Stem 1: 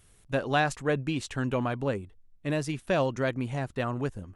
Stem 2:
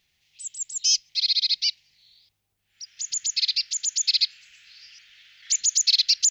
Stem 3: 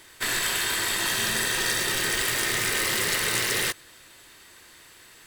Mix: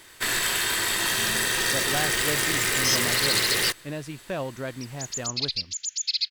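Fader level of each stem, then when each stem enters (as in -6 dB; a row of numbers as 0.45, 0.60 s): -5.0, -5.0, +1.0 dB; 1.40, 2.00, 0.00 s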